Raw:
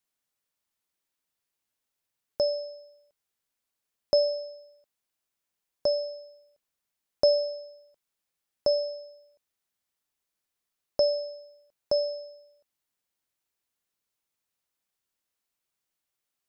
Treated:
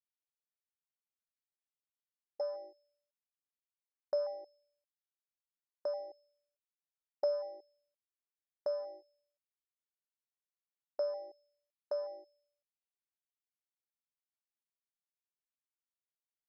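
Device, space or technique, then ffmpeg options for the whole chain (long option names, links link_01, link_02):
over-cleaned archive recording: -af "highpass=110,lowpass=5000,highpass=frequency=1100:poles=1,afwtdn=0.02,volume=-4dB"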